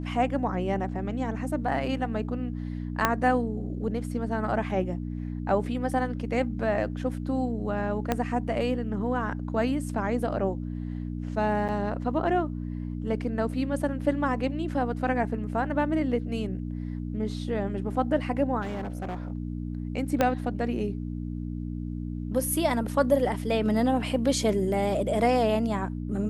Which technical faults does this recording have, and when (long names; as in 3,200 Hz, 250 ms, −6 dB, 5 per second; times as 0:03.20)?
mains hum 60 Hz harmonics 5 −33 dBFS
0:03.05: click −6 dBFS
0:08.12: click −11 dBFS
0:11.68–0:11.69: drop-out 7.9 ms
0:18.61–0:19.32: clipping −29 dBFS
0:20.21: click −9 dBFS